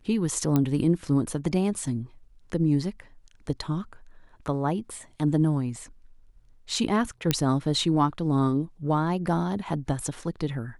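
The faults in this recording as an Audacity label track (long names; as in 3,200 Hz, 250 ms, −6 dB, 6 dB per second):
0.560000	0.560000	click −11 dBFS
7.310000	7.310000	click −7 dBFS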